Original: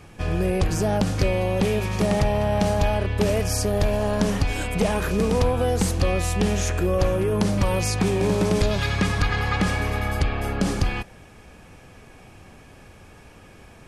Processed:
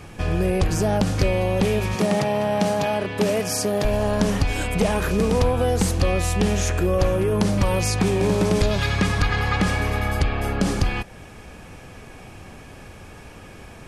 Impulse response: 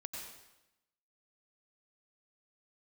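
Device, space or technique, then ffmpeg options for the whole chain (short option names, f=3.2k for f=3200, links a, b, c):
parallel compression: -filter_complex "[0:a]asettb=1/sr,asplit=3[a][b][c];[a]atrim=end=1.954[d];[b]atrim=start=1.95:end=3.85,asetpts=PTS-STARTPTS,afade=t=in:d=0.004:c=qsin,afade=t=out:st=1.896:d=0.004:c=qsin,highpass=f=140:w=0.5412,highpass=f=140:w=1.3066[e];[c]atrim=start=3.846[f];[d][e]acrossfade=d=0.004:c1=hsin:c2=qsin[g];[g][f]acrossfade=d=0.004:c1=qsin:c2=hsin,asplit=2[h][i];[i]acompressor=threshold=-34dB:ratio=6,volume=-1dB[j];[h][j]amix=inputs=2:normalize=0"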